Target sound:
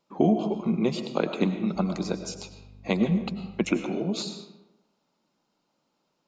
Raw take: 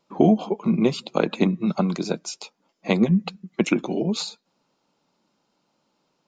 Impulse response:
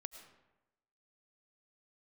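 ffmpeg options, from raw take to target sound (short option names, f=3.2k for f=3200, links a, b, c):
-filter_complex "[0:a]asettb=1/sr,asplit=3[a][b][c];[a]atrim=end=1.754[d];[b]atrim=start=1.75:end=3.75,asetpts=PTS-STARTPTS,afade=t=in:d=0.004:c=qsin,afade=t=out:st=1.996:d=0.004:c=qsin,aeval=exprs='val(0)+0.00891*(sin(2*PI*50*n/s)+sin(2*PI*2*50*n/s)/2+sin(2*PI*3*50*n/s)/3+sin(2*PI*4*50*n/s)/4+sin(2*PI*5*50*n/s)/5)':c=same[e];[c]atrim=start=3.746[f];[d][e]acrossfade=d=0.004:c1=hsin:c2=qsin[g];[g][f]acrossfade=d=0.004:c1=qsin:c2=hsin[h];[1:a]atrim=start_sample=2205[i];[h][i]afir=irnorm=-1:irlink=0"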